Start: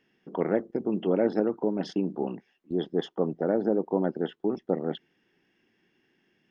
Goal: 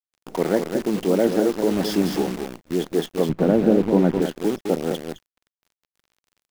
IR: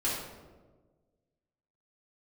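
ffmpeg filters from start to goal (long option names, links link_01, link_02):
-filter_complex "[0:a]asettb=1/sr,asplit=3[link_01][link_02][link_03];[link_01]atrim=end=1.714[link_04];[link_02]atrim=start=1.71:end=2.23,asetpts=PTS-STARTPTS,afade=type=in:duration=0.004:curve=qsin,afade=type=out:start_time=0.516:duration=0.004:curve=qsin,aeval=exprs='val(0)+0.5*0.0237*sgn(val(0))':channel_layout=same[link_05];[link_03]atrim=start=2.226[link_06];[link_04][link_05]acrossfade=duration=0.004:curve1=hsin:curve2=qsin[link_07];[link_07][link_06]acrossfade=duration=0.004:curve1=qsin:curve2=hsin,aecho=1:1:210:0.447,acrusher=bits=7:dc=4:mix=0:aa=0.000001,asettb=1/sr,asplit=3[link_08][link_09][link_10];[link_08]atrim=end=3.294[link_11];[link_09]atrim=start=3.29:end=4.22,asetpts=PTS-STARTPTS,afade=type=in:duration=0.004:curve=qsin,afade=type=out:start_time=0.926:duration=0.004:curve=qsin,bass=frequency=250:gain=10,treble=frequency=4000:gain=-11[link_12];[link_10]atrim=start=4.216[link_13];[link_11][link_12]acrossfade=duration=0.004:curve1=hsin:curve2=qsin[link_14];[link_14][link_13]acrossfade=duration=0.004:curve1=qsin:curve2=hsin,volume=5dB"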